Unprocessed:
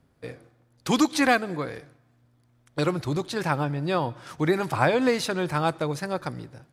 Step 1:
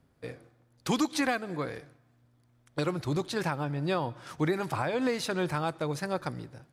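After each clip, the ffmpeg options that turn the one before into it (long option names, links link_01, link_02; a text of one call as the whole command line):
ffmpeg -i in.wav -af "alimiter=limit=-15dB:level=0:latency=1:release=313,volume=-2.5dB" out.wav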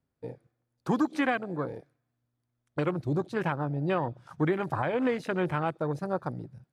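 ffmpeg -i in.wav -af "afwtdn=0.0158,volume=1.5dB" out.wav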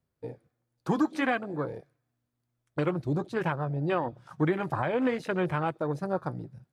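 ffmpeg -i in.wav -af "flanger=delay=1.7:depth=4.6:regen=-69:speed=0.55:shape=sinusoidal,volume=4.5dB" out.wav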